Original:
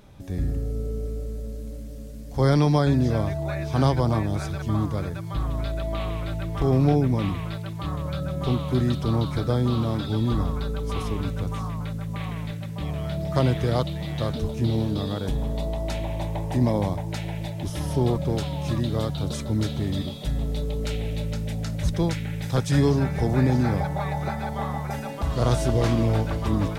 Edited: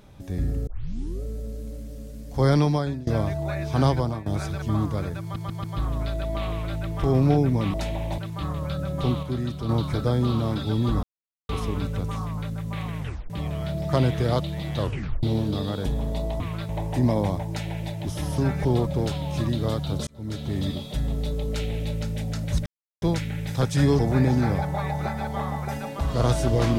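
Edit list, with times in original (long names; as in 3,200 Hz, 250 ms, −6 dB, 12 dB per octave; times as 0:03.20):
0:00.67: tape start 0.56 s
0:02.58–0:03.07: fade out, to −22.5 dB
0:03.93–0:04.26: fade out, to −17.5 dB
0:05.22: stutter 0.14 s, 4 plays
0:07.32–0:07.61: swap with 0:15.83–0:16.27
0:08.66–0:09.12: clip gain −5.5 dB
0:10.46–0:10.92: silence
0:12.43: tape stop 0.30 s
0:14.22: tape stop 0.44 s
0:19.38–0:19.91: fade in
0:21.97: splice in silence 0.36 s
0:22.94–0:23.21: move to 0:17.96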